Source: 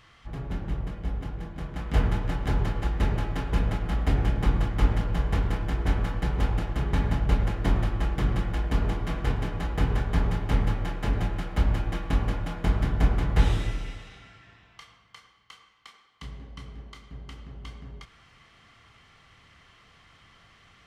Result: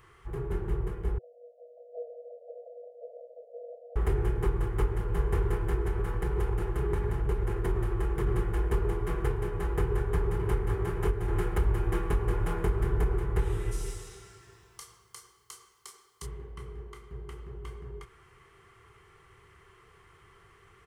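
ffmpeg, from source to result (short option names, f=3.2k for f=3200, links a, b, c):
-filter_complex "[0:a]asettb=1/sr,asplit=3[a][b][c];[a]atrim=end=1.184[d];[b]atrim=start=1.18:end=3.96,asetpts=PTS-STARTPTS,afade=t=in:d=0.004:c=qsin,afade=t=out:st=2.776:d=0.004:c=qsin,asuperpass=centerf=580:order=20:qfactor=2.4[e];[c]atrim=start=3.956[f];[d][e]acrossfade=d=0.004:c1=hsin:c2=qsin[g];[g][f]acrossfade=d=0.004:c1=qsin:c2=hsin,asettb=1/sr,asplit=3[h][i][j];[h]atrim=end=5.834[k];[i]atrim=start=5.83:end=8.27,asetpts=PTS-STARTPTS,afade=t=in:d=0.004:c=qsin,afade=t=out:st=2.436:d=0.004:c=qsin,acompressor=threshold=-25dB:ratio=3:attack=3.2:release=140:knee=1:detection=peak[l];[j]atrim=start=8.266[m];[k][l]acrossfade=d=0.004:c1=hsin:c2=qsin[n];[n][m]acrossfade=d=0.004:c1=qsin:c2=hsin,asplit=2[o][p];[p]afade=t=in:st=9.83:d=0.01,afade=t=out:st=10.55:d=0.01,aecho=0:1:560|1120|1680|2240:0.562341|0.196819|0.0688868|0.0241104[q];[o][q]amix=inputs=2:normalize=0,asettb=1/sr,asplit=3[r][s][t];[r]atrim=end=11.284[u];[s]atrim=start=11.28:end=13.18,asetpts=PTS-STARTPTS,afade=t=in:d=0.004:c=qsin,afade=t=out:st=1.896:d=0.004:c=qsin,acontrast=33[v];[t]atrim=start=13.176[w];[u][v]acrossfade=d=0.004:c1=hsin:c2=qsin[x];[x][w]acrossfade=d=0.004:c1=qsin:c2=hsin,asplit=3[y][z][aa];[y]afade=t=out:st=13.71:d=0.02[ab];[z]highshelf=f=3.6k:t=q:w=1.5:g=13.5,afade=t=in:st=13.71:d=0.02,afade=t=out:st=16.25:d=0.02[ac];[aa]afade=t=in:st=16.25:d=0.02[ad];[ab][ac][ad]amix=inputs=3:normalize=0,firequalizer=gain_entry='entry(120,0);entry(270,-14);entry(380,14);entry(580,-9);entry(960,1);entry(3800,-12);entry(5700,-8);entry(9100,5)':delay=0.05:min_phase=1,alimiter=limit=-17.5dB:level=0:latency=1:release=469"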